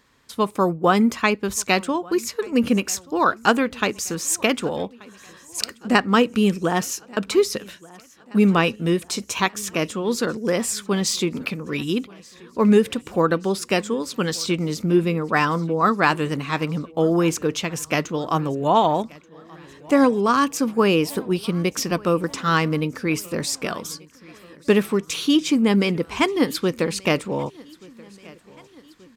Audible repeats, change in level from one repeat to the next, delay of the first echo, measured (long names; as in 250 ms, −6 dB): 3, −5.0 dB, 1,181 ms